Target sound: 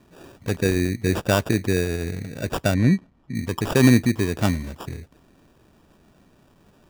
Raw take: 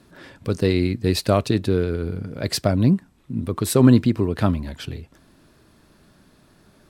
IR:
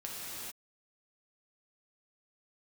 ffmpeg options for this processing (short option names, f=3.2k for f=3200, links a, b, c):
-filter_complex "[0:a]acrusher=samples=21:mix=1:aa=0.000001,asettb=1/sr,asplit=3[a][b][c];[a]atrim=end=2.744[d];[b]atrim=start=2.74:end=3.35,asetpts=PTS-STARTPTS,afade=t=in:d=0.004:c=qsin,afade=t=out:st=0.606:d=0.004:c=qsin,aemphasis=mode=reproduction:type=75fm[e];[c]atrim=start=3.346[f];[d][e]acrossfade=d=0.004:c1=hsin:c2=qsin[g];[g][f]acrossfade=d=0.004:c1=qsin:c2=hsin,volume=-1.5dB"